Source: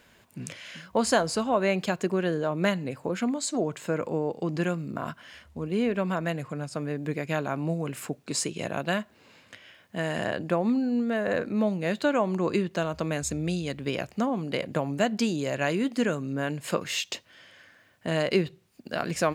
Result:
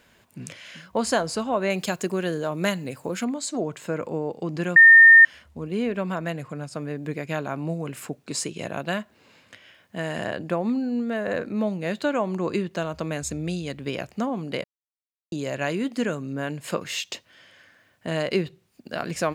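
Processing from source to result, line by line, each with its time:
1.70–3.25 s: treble shelf 5.1 kHz +12 dB
4.76–5.25 s: bleep 1.82 kHz -7 dBFS
14.64–15.32 s: mute

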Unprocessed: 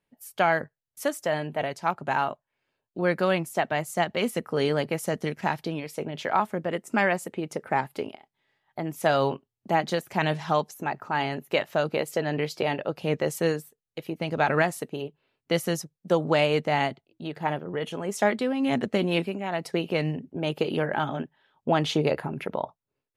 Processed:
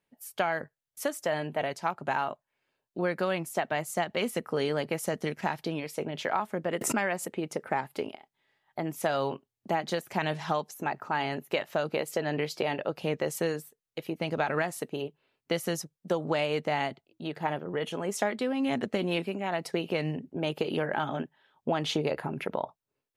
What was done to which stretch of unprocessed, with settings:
6.81–7.33 s: swell ahead of each attack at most 62 dB/s
whole clip: bass shelf 150 Hz -5.5 dB; compression 4:1, threshold -25 dBFS

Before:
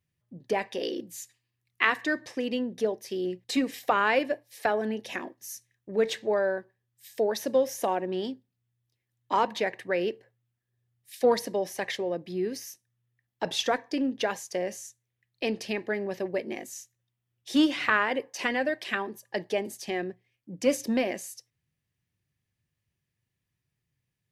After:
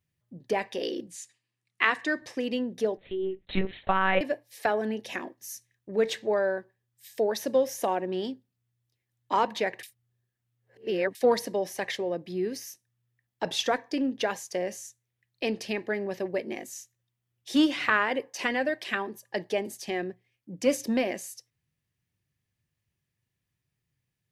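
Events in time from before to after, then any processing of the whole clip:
1.07–2.22 s: elliptic band-pass 140–9700 Hz
2.97–4.21 s: monotone LPC vocoder at 8 kHz 190 Hz
9.83–11.15 s: reverse

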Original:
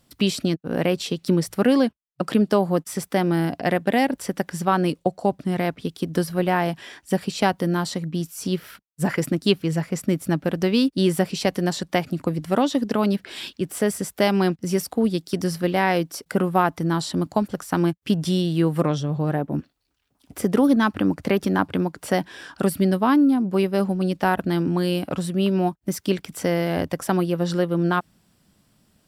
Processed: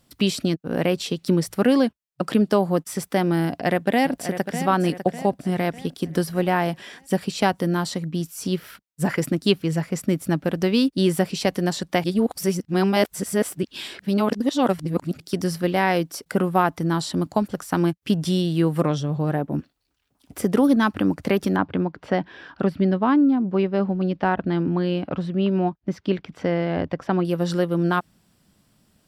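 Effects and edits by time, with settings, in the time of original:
3.45–4.62 s: echo throw 600 ms, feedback 45%, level -10 dB
12.04–15.20 s: reverse
21.56–27.25 s: distance through air 240 m

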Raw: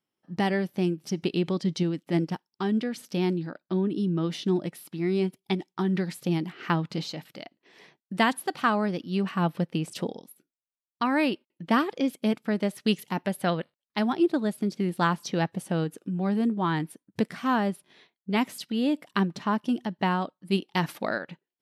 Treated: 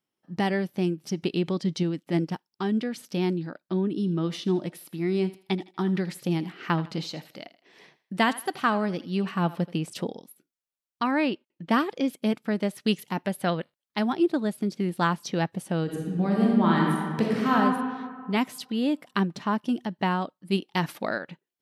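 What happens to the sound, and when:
3.93–9.78 s: thinning echo 80 ms, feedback 36%, level -16 dB
11.11–11.69 s: distance through air 76 m
15.83–17.55 s: reverb throw, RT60 1.8 s, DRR -3 dB

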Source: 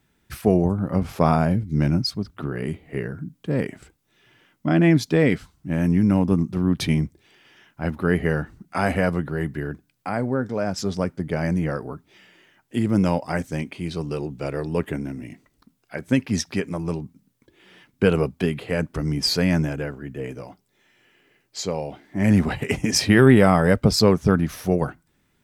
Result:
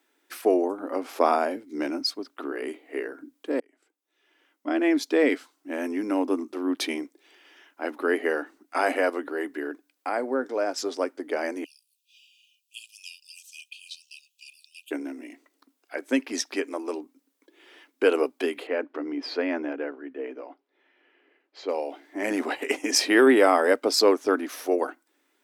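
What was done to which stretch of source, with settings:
3.60–5.35 s: fade in
11.64–14.91 s: brick-wall FIR high-pass 2.4 kHz
18.67–21.69 s: distance through air 330 m
whole clip: elliptic high-pass 280 Hz, stop band 40 dB

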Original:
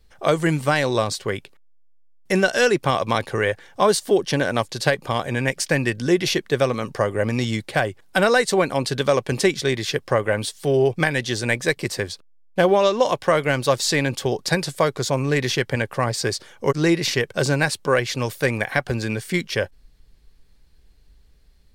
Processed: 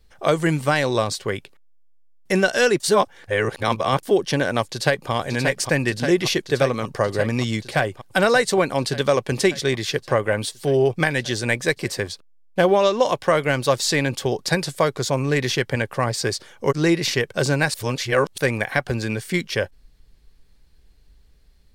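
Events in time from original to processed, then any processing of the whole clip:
2.80–4.03 s: reverse
4.62–5.11 s: echo throw 580 ms, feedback 80%, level -5.5 dB
17.74–18.38 s: reverse

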